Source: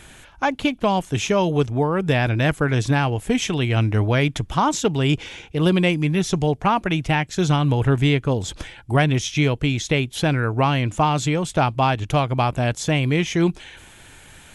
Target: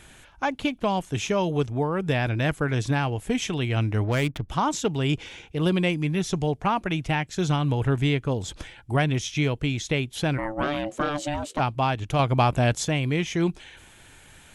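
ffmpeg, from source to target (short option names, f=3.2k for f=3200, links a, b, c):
-filter_complex "[0:a]asettb=1/sr,asplit=3[a][b][c];[a]atrim=end=4.044[d];[b]atrim=start=4.04:end=4.49,asetpts=PTS-STARTPTS,afade=t=in:d=0.004:c=qsin,afade=t=out:st=0.446:d=0.004:c=qsin,adynamicsmooth=sensitivity=3:basefreq=770[e];[c]atrim=start=4.486[f];[d][e]acrossfade=d=0.004:c1=hsin:c2=qsin[g];[g][f]acrossfade=d=0.004:c1=qsin:c2=hsin,asplit=3[h][i][j];[h]afade=t=out:st=10.37:d=0.02[k];[i]aeval=exprs='val(0)*sin(2*PI*440*n/s)':c=same,afade=t=in:st=10.37:d=0.02,afade=t=out:st=11.58:d=0.02[l];[j]afade=t=in:st=11.58:d=0.02[m];[k][l][m]amix=inputs=3:normalize=0,asettb=1/sr,asplit=3[n][o][p];[n]atrim=end=12.194[q];[o]atrim=start=12.19:end=12.85,asetpts=PTS-STARTPTS,afade=t=in:d=0.004:c=qsin,afade=t=out:st=0.656:d=0.004:c=qsin,acontrast=33[r];[p]atrim=start=12.846[s];[q][r]acrossfade=d=0.004:c1=hsin:c2=qsin[t];[t][s]acrossfade=d=0.004:c1=qsin:c2=hsin,volume=-5dB"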